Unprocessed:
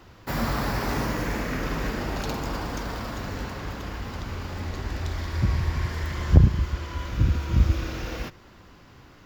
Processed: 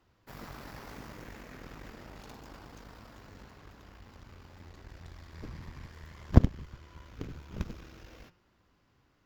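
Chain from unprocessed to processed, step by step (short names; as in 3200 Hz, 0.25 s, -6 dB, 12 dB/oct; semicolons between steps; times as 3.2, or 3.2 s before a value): de-hum 178.2 Hz, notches 33; added harmonics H 3 -10 dB, 6 -17 dB, 7 -32 dB, 8 -19 dB, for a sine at -1.5 dBFS; gain -1 dB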